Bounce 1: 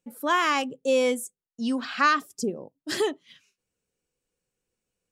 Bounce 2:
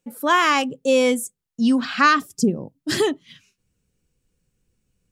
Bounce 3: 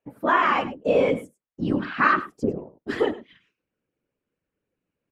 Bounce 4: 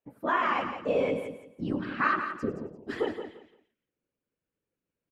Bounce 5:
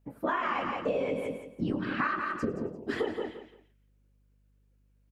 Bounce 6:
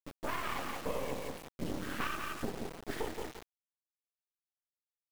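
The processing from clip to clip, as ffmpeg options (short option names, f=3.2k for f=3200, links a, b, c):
-af "asubboost=boost=5.5:cutoff=230,volume=6dB"
-filter_complex "[0:a]acrossover=split=220 2600:gain=0.0891 1 0.0631[a][b][c];[a][b][c]amix=inputs=3:normalize=0,aecho=1:1:100:0.168,afftfilt=real='hypot(re,im)*cos(2*PI*random(0))':imag='hypot(re,im)*sin(2*PI*random(1))':win_size=512:overlap=0.75,volume=4dB"
-af "aecho=1:1:172|344|516:0.355|0.0816|0.0188,volume=-7dB"
-filter_complex "[0:a]acompressor=threshold=-31dB:ratio=12,aeval=exprs='val(0)+0.000282*(sin(2*PI*50*n/s)+sin(2*PI*2*50*n/s)/2+sin(2*PI*3*50*n/s)/3+sin(2*PI*4*50*n/s)/4+sin(2*PI*5*50*n/s)/5)':c=same,asplit=2[a][b];[b]adelay=22,volume=-11.5dB[c];[a][c]amix=inputs=2:normalize=0,volume=4.5dB"
-af "acrusher=bits=4:dc=4:mix=0:aa=0.000001,volume=-3dB"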